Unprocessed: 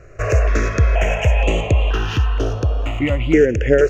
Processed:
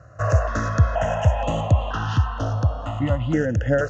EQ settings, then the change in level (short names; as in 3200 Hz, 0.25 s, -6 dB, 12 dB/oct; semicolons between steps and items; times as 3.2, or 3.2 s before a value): HPF 80 Hz 24 dB/oct; air absorption 100 m; fixed phaser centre 960 Hz, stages 4; +3.0 dB